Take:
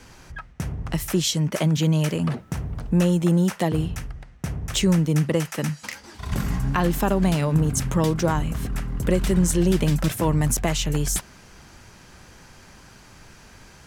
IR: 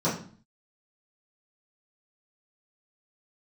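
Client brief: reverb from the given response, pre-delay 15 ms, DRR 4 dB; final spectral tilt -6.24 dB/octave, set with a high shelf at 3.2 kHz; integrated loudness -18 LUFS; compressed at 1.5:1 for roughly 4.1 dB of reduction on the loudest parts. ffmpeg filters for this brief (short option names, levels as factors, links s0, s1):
-filter_complex "[0:a]highshelf=f=3200:g=6,acompressor=threshold=0.0501:ratio=1.5,asplit=2[s0][s1];[1:a]atrim=start_sample=2205,adelay=15[s2];[s1][s2]afir=irnorm=-1:irlink=0,volume=0.158[s3];[s0][s3]amix=inputs=2:normalize=0,volume=1.06"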